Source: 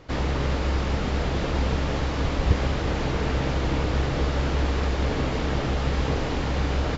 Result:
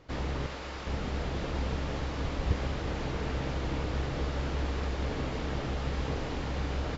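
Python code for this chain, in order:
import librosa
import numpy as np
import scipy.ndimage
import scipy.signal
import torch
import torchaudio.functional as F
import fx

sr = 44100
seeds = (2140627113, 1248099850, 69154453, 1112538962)

y = fx.low_shelf(x, sr, hz=360.0, db=-11.5, at=(0.46, 0.87))
y = F.gain(torch.from_numpy(y), -8.0).numpy()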